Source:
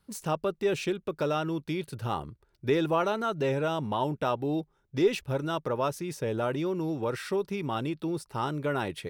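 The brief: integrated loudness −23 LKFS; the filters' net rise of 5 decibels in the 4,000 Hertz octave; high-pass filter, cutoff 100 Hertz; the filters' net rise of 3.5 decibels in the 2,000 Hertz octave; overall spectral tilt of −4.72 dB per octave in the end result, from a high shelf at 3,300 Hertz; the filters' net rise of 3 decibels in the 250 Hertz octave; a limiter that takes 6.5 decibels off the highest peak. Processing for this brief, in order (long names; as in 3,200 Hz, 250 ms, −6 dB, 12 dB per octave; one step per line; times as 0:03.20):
high-pass filter 100 Hz
parametric band 250 Hz +4.5 dB
parametric band 2,000 Hz +4 dB
high-shelf EQ 3,300 Hz −4 dB
parametric band 4,000 Hz +7.5 dB
level +6.5 dB
brickwall limiter −11 dBFS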